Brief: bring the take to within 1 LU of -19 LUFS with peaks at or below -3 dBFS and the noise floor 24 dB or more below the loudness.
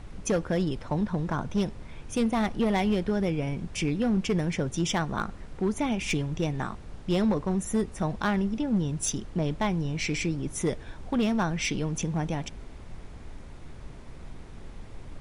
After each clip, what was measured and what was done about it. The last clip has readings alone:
clipped 1.5%; flat tops at -19.5 dBFS; noise floor -44 dBFS; noise floor target -53 dBFS; loudness -28.5 LUFS; peak -19.5 dBFS; loudness target -19.0 LUFS
-> clip repair -19.5 dBFS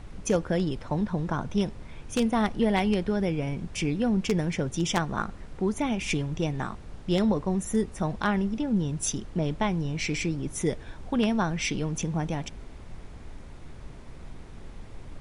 clipped 0.0%; noise floor -44 dBFS; noise floor target -52 dBFS
-> noise print and reduce 8 dB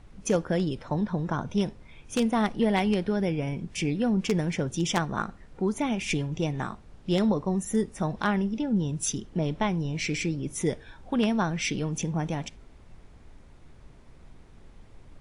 noise floor -52 dBFS; noise floor target -53 dBFS
-> noise print and reduce 6 dB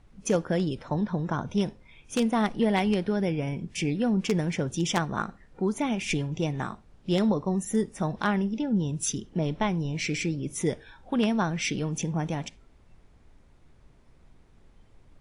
noise floor -58 dBFS; loudness -28.5 LUFS; peak -10.5 dBFS; loudness target -19.0 LUFS
-> gain +9.5 dB; limiter -3 dBFS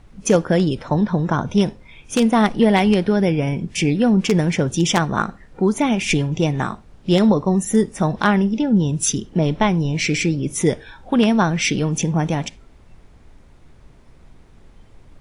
loudness -19.0 LUFS; peak -3.0 dBFS; noise floor -48 dBFS

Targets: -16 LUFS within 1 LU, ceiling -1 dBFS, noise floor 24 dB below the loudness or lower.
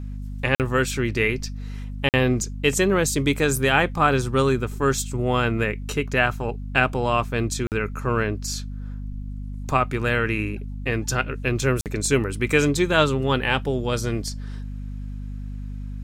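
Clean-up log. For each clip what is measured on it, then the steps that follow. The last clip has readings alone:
dropouts 4; longest dropout 48 ms; hum 50 Hz; harmonics up to 250 Hz; hum level -29 dBFS; loudness -22.5 LUFS; peak -4.0 dBFS; loudness target -16.0 LUFS
-> interpolate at 0.55/2.09/7.67/11.81, 48 ms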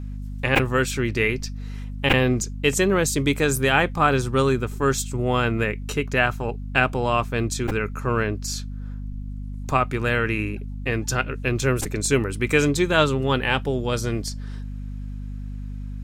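dropouts 0; hum 50 Hz; harmonics up to 250 Hz; hum level -29 dBFS
-> notches 50/100/150/200/250 Hz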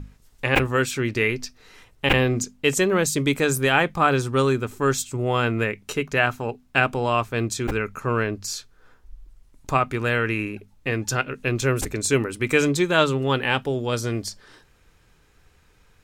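hum none; loudness -23.0 LUFS; peak -4.5 dBFS; loudness target -16.0 LUFS
-> gain +7 dB; limiter -1 dBFS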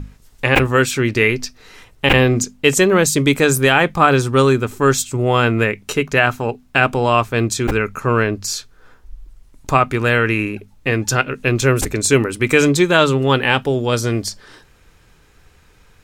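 loudness -16.0 LUFS; peak -1.0 dBFS; noise floor -51 dBFS

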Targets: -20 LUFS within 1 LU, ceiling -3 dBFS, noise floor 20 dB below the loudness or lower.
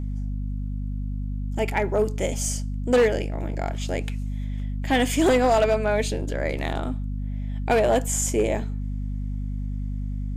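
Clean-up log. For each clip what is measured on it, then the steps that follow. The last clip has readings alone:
clipped 0.7%; flat tops at -13.5 dBFS; hum 50 Hz; harmonics up to 250 Hz; hum level -26 dBFS; loudness -25.5 LUFS; peak -13.5 dBFS; loudness target -20.0 LUFS
-> clip repair -13.5 dBFS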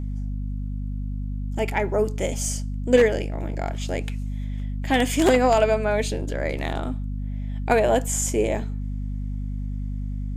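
clipped 0.0%; hum 50 Hz; harmonics up to 250 Hz; hum level -26 dBFS
-> notches 50/100/150/200/250 Hz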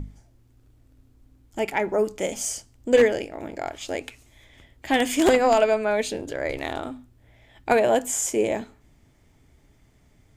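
hum none; loudness -23.5 LUFS; peak -4.5 dBFS; loudness target -20.0 LUFS
-> gain +3.5 dB; limiter -3 dBFS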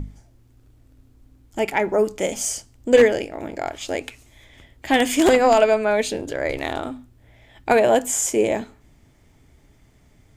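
loudness -20.5 LUFS; peak -3.0 dBFS; noise floor -56 dBFS

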